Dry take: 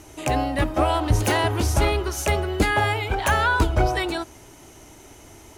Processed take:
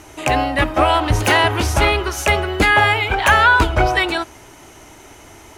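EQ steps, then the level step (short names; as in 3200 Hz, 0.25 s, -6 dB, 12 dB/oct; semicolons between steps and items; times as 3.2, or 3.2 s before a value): dynamic EQ 2700 Hz, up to +4 dB, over -37 dBFS, Q 1.2; bell 1500 Hz +6.5 dB 2.6 oct; +2.0 dB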